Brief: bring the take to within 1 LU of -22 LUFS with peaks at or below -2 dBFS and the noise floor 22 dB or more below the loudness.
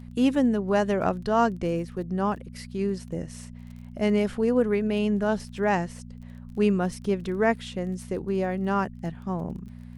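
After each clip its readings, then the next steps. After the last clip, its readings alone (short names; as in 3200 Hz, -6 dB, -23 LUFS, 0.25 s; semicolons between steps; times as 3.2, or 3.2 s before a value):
ticks 24/s; hum 60 Hz; harmonics up to 240 Hz; hum level -39 dBFS; loudness -26.5 LUFS; peak -9.5 dBFS; loudness target -22.0 LUFS
-> de-click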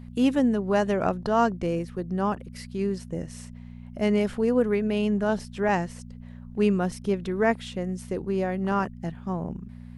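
ticks 0/s; hum 60 Hz; harmonics up to 240 Hz; hum level -39 dBFS
-> de-hum 60 Hz, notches 4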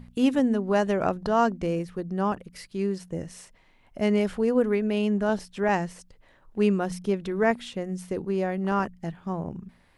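hum none; loudness -26.5 LUFS; peak -10.0 dBFS; loudness target -22.0 LUFS
-> gain +4.5 dB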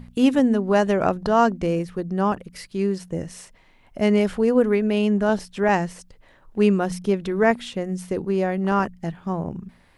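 loudness -22.0 LUFS; peak -5.5 dBFS; noise floor -55 dBFS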